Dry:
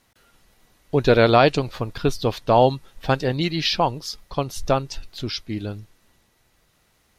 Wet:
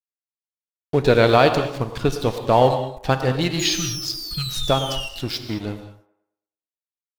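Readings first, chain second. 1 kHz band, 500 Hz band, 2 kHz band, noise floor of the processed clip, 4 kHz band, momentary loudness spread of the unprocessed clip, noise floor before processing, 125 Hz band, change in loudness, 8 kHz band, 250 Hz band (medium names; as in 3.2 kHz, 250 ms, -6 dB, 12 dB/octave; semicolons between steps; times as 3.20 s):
0.0 dB, +0.5 dB, +1.0 dB, under -85 dBFS, +3.0 dB, 15 LU, -64 dBFS, +1.0 dB, +1.0 dB, +9.0 dB, +0.5 dB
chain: spectral replace 3.60–4.58 s, 230–1200 Hz both; in parallel at -1.5 dB: compression, threshold -26 dBFS, peak gain reduction 15 dB; on the sum: painted sound fall, 3.59–5.09 s, 2.7–6.9 kHz -27 dBFS; crossover distortion -32 dBFS; on a send: feedback echo behind a band-pass 109 ms, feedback 38%, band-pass 740 Hz, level -11 dB; on the sum: gated-style reverb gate 240 ms flat, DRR 8 dB; trim -1 dB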